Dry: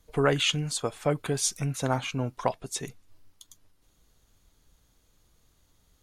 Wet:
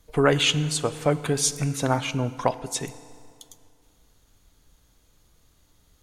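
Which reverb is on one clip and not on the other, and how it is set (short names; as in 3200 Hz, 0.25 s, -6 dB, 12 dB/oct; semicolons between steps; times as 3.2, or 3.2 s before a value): FDN reverb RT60 2.3 s, low-frequency decay 1×, high-frequency decay 0.75×, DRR 14 dB; gain +4 dB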